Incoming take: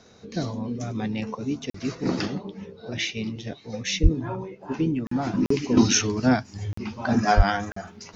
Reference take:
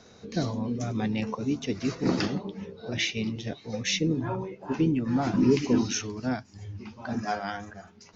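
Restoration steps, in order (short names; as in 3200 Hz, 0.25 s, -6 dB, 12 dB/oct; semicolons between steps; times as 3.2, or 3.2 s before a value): 4.02–4.14 HPF 140 Hz 24 dB/oct; 7.36–7.48 HPF 140 Hz 24 dB/oct; interpolate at 1.7/5.07/5.46/6.73/7.72, 44 ms; gain 0 dB, from 5.77 s -9.5 dB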